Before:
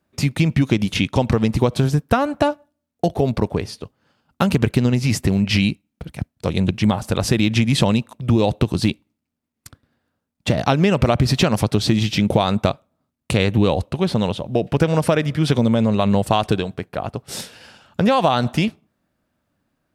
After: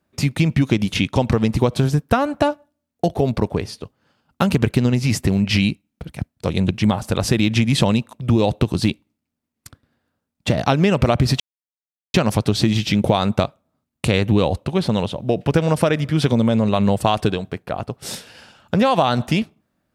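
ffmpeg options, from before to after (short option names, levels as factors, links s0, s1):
-filter_complex "[0:a]asplit=2[s0][s1];[s0]atrim=end=11.4,asetpts=PTS-STARTPTS,afade=t=out:st=11.396:d=0.004:c=hsin,apad=pad_dur=0.74[s2];[s1]atrim=start=11.4,asetpts=PTS-STARTPTS,afade=t=in:d=0.004:c=hsin[s3];[s2][s3]concat=n=2:v=0:a=1"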